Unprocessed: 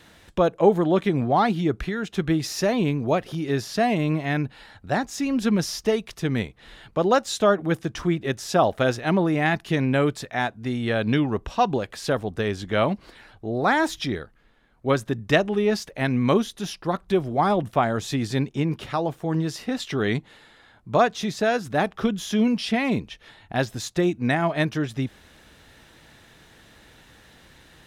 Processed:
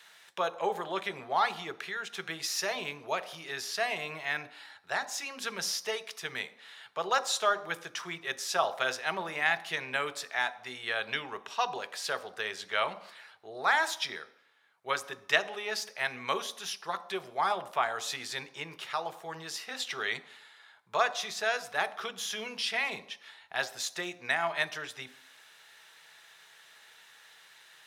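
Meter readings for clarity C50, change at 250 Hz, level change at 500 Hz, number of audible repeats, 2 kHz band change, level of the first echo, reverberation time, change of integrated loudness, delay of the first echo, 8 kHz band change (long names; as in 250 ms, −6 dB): 16.0 dB, −25.0 dB, −13.0 dB, no echo audible, −2.0 dB, no echo audible, 0.65 s, −8.5 dB, no echo audible, −1.5 dB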